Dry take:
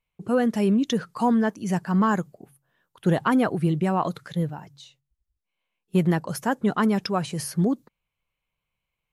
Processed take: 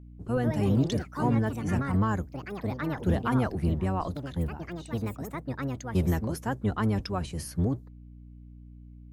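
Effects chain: octave divider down 1 oct, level +1 dB; ever faster or slower copies 206 ms, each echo +4 st, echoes 2, each echo -6 dB; hum 60 Hz, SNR 18 dB; trim -7.5 dB

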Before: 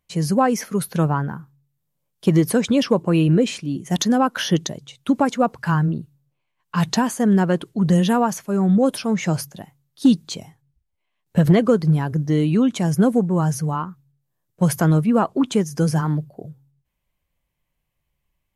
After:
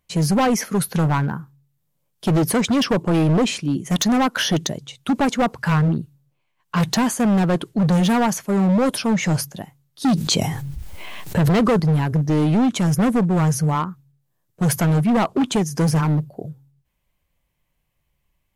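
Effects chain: hard clipper -18.5 dBFS, distortion -8 dB; 10.08–11.80 s: level flattener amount 70%; trim +4 dB

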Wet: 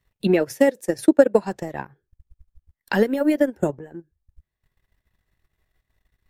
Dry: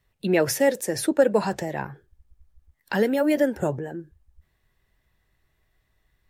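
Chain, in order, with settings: dynamic bell 290 Hz, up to +4 dB, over -30 dBFS, Q 1.1; transient shaper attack +8 dB, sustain -12 dB; trim -3 dB

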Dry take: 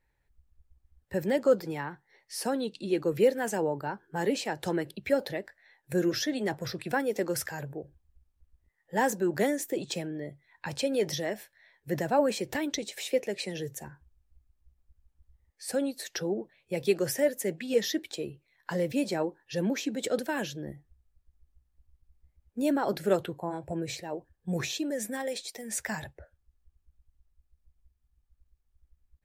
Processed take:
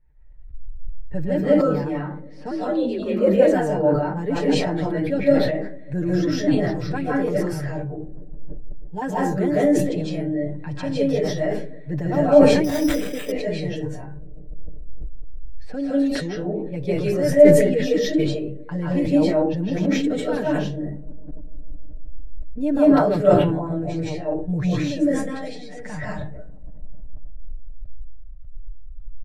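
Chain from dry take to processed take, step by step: RIAA curve playback; level-controlled noise filter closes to 2.8 kHz, open at -23.5 dBFS; comb 6.7 ms, depth 78%; 2.51–3.34 s: frequency shift +52 Hz; 7.68–9.02 s: static phaser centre 370 Hz, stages 8; feedback echo behind a low-pass 150 ms, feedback 74%, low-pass 440 Hz, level -19 dB; reverberation RT60 0.35 s, pre-delay 120 ms, DRR -7.5 dB; 12.64–13.32 s: careless resampling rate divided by 8×, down none, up hold; decay stretcher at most 46 dB/s; trim -5 dB

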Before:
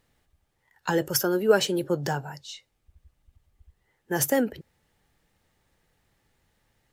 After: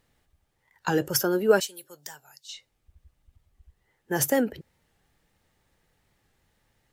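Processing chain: 1.60–2.49 s: pre-emphasis filter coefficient 0.97; warped record 45 rpm, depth 100 cents

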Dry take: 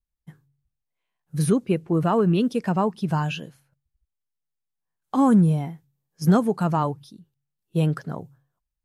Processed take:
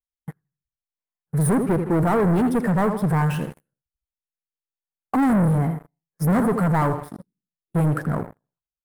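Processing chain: feedback delay 81 ms, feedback 38%, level -14 dB; waveshaping leveller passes 5; high-order bell 4.1 kHz -14.5 dB; trim -8 dB

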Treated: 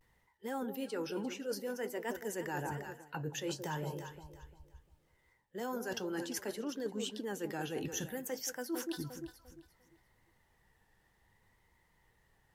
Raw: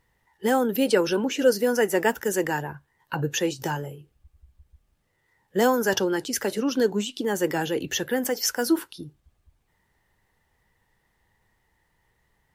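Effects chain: flange 0.44 Hz, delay 0.3 ms, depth 8.7 ms, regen -77%; time-frequency box 7.86–8.28 s, 220–5800 Hz -9 dB; vibrato 0.62 Hz 59 cents; echo whose repeats swap between lows and highs 174 ms, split 840 Hz, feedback 52%, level -11 dB; reverse; compression 16:1, threshold -37 dBFS, peak gain reduction 20.5 dB; reverse; trim +2 dB

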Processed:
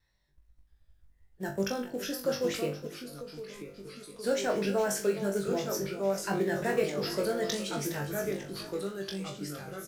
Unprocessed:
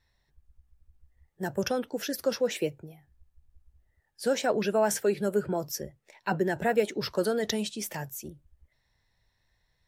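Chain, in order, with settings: in parallel at -5.5 dB: short-mantissa float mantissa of 2-bit; on the sum: feedback delay 413 ms, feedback 45%, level -14 dB; wow and flutter 19 cents; ever faster or slower copies 670 ms, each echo -2 st, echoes 2, each echo -6 dB; on a send: flutter echo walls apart 3.5 m, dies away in 0.3 s; 2.87–4.24 s: on the sum: compression 4:1, threshold -32 dBFS, peak gain reduction 9.5 dB; peaking EQ 820 Hz -3 dB 0.36 oct; trim -8 dB

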